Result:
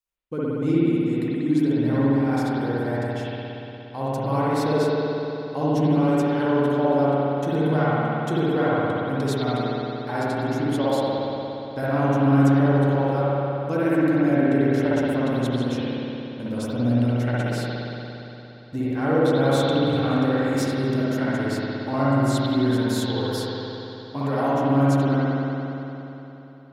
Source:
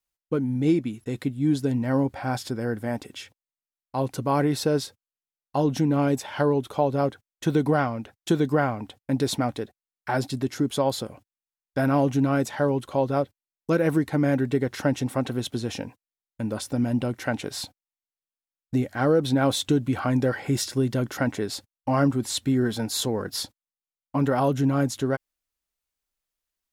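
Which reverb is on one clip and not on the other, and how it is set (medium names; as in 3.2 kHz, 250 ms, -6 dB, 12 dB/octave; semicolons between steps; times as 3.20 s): spring tank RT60 3.4 s, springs 58 ms, chirp 40 ms, DRR -9 dB; trim -6.5 dB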